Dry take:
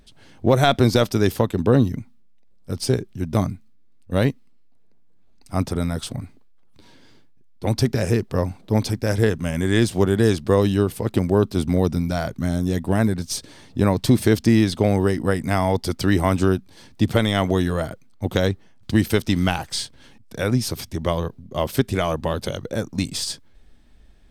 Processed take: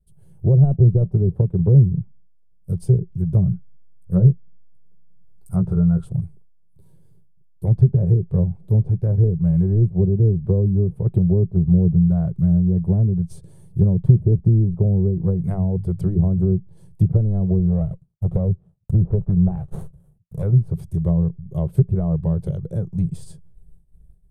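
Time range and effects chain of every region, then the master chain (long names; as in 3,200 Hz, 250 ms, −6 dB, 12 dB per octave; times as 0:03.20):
0:03.46–0:06.05: parametric band 1,400 Hz +13 dB 0.26 octaves + double-tracking delay 16 ms −5.5 dB
0:15.40–0:16.52: high-shelf EQ 2,400 Hz +9 dB + mains-hum notches 50/100/150/200/250 Hz
0:17.59–0:20.43: high-shelf EQ 11,000 Hz +4.5 dB + comb filter 1.6 ms, depth 34% + windowed peak hold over 17 samples
whole clip: downward expander −44 dBFS; treble cut that deepens with the level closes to 480 Hz, closed at −14.5 dBFS; drawn EQ curve 100 Hz 0 dB, 170 Hz +6 dB, 260 Hz −26 dB, 370 Hz −8 dB, 2,000 Hz −30 dB, 5,500 Hz −28 dB, 9,900 Hz −1 dB; level +5.5 dB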